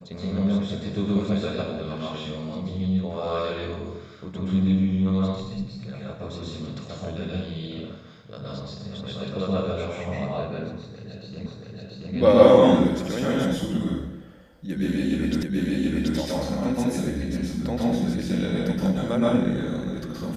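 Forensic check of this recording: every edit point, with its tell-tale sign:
0:11.46: the same again, the last 0.68 s
0:15.43: the same again, the last 0.73 s

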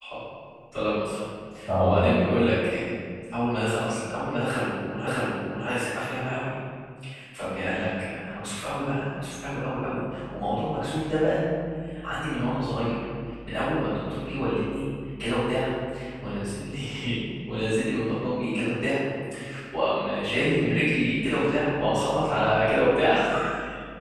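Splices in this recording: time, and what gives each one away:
0:05.07: the same again, the last 0.61 s

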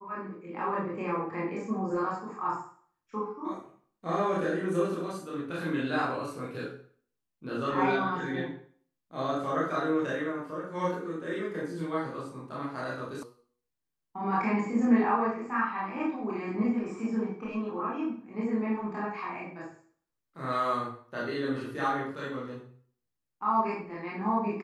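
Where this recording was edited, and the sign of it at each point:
0:13.23: cut off before it has died away

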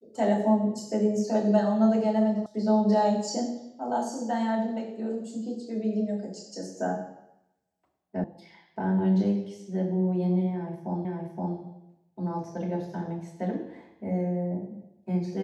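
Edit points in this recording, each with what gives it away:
0:02.46: cut off before it has died away
0:08.24: cut off before it has died away
0:11.05: the same again, the last 0.52 s

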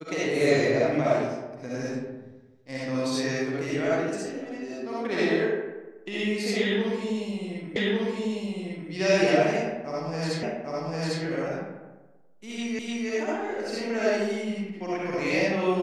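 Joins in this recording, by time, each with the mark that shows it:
0:07.76: the same again, the last 1.15 s
0:10.43: the same again, the last 0.8 s
0:12.79: the same again, the last 0.3 s

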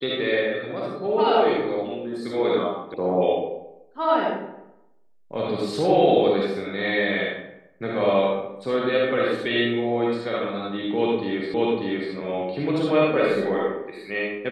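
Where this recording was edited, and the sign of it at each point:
0:02.94: cut off before it has died away
0:11.54: the same again, the last 0.59 s

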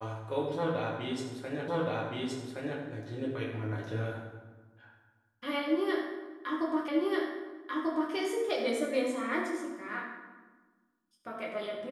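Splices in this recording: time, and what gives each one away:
0:01.68: the same again, the last 1.12 s
0:06.88: the same again, the last 1.24 s

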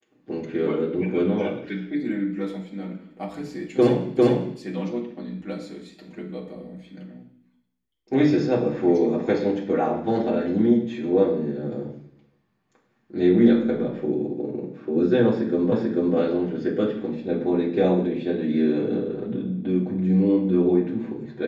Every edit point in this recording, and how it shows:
0:04.17: the same again, the last 0.4 s
0:15.72: the same again, the last 0.44 s

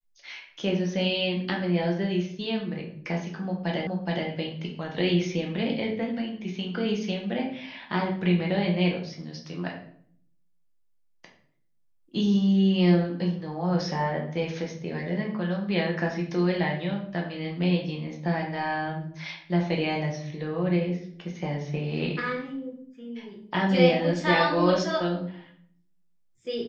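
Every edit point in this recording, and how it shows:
0:03.87: the same again, the last 0.42 s

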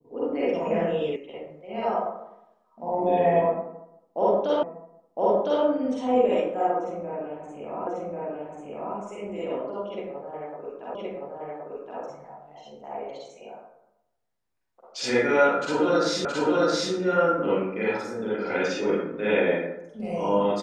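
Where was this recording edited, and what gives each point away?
0:01.16: cut off before it has died away
0:04.63: the same again, the last 1.01 s
0:07.87: the same again, the last 1.09 s
0:10.95: the same again, the last 1.07 s
0:16.25: the same again, the last 0.67 s

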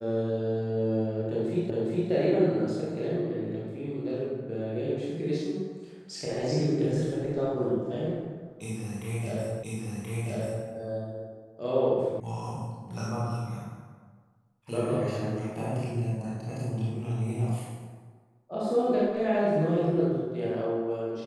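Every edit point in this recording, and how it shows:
0:01.70: the same again, the last 0.41 s
0:09.63: the same again, the last 1.03 s
0:12.20: cut off before it has died away

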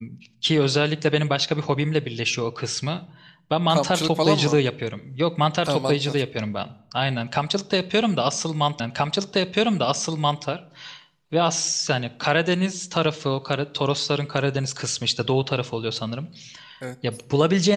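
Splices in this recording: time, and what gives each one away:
0:08.80: the same again, the last 1.63 s

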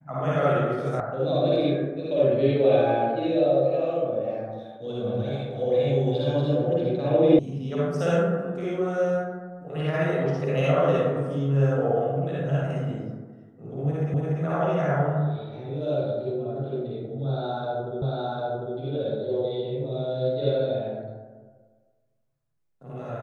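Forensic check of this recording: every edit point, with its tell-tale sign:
0:01.00: cut off before it has died away
0:07.39: cut off before it has died away
0:14.14: the same again, the last 0.29 s
0:18.02: the same again, the last 0.75 s

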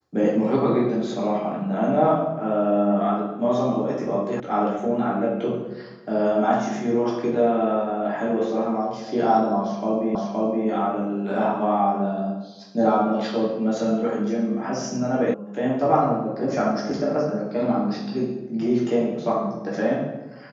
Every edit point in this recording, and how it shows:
0:04.40: cut off before it has died away
0:10.15: the same again, the last 0.52 s
0:15.34: cut off before it has died away

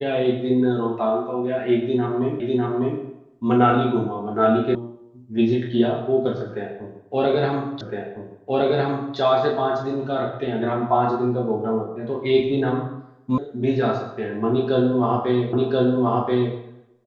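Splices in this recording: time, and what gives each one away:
0:02.40: the same again, the last 0.6 s
0:04.75: cut off before it has died away
0:07.81: the same again, the last 1.36 s
0:13.38: cut off before it has died away
0:15.53: the same again, the last 1.03 s

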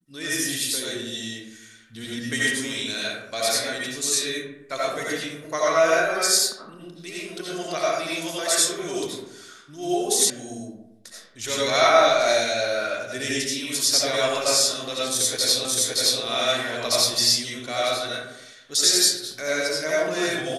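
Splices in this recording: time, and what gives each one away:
0:10.30: cut off before it has died away
0:15.65: the same again, the last 0.57 s

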